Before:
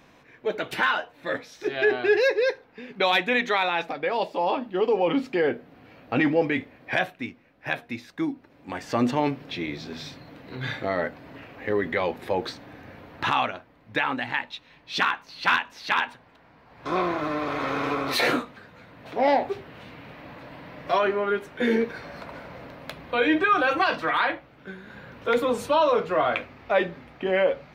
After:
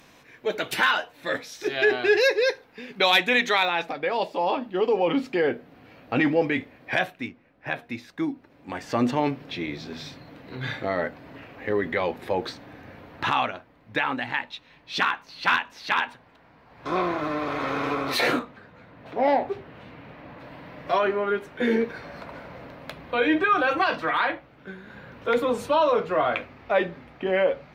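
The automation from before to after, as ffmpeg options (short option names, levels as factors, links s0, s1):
-af "asetnsamples=n=441:p=0,asendcmd='3.65 equalizer g 2;7.28 equalizer g -8;7.79 equalizer g -1;18.39 equalizer g -10;20.4 equalizer g -3',equalizer=f=13000:t=o:w=2.5:g=10"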